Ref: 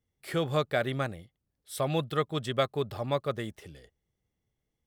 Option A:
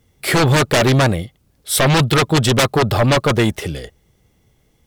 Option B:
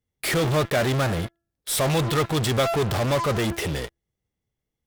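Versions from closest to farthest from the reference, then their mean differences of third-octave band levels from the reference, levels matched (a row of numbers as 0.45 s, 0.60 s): A, B; 6.5 dB, 9.5 dB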